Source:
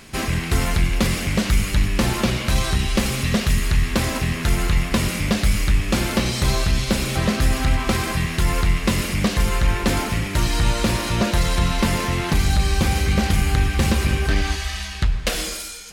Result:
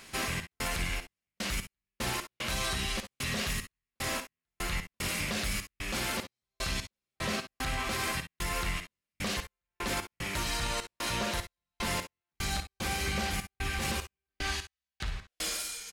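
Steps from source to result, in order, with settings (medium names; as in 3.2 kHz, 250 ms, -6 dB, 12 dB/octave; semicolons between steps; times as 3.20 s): bass shelf 360 Hz -11 dB; peak limiter -17.5 dBFS, peak gain reduction 9.5 dB; trance gate "xx.xx..x..x.x" 75 bpm -60 dB; on a send: early reflections 56 ms -10.5 dB, 67 ms -15 dB; on the sum: trim -5 dB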